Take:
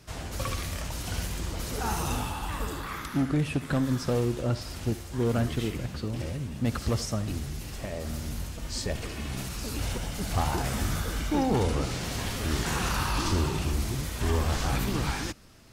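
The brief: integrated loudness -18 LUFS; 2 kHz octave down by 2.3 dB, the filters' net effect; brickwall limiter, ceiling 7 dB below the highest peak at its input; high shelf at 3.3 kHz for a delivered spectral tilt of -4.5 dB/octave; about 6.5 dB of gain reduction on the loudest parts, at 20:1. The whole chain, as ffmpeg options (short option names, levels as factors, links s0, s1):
-af "equalizer=f=2000:t=o:g=-4.5,highshelf=f=3300:g=4,acompressor=threshold=0.0398:ratio=20,volume=7.94,alimiter=limit=0.376:level=0:latency=1"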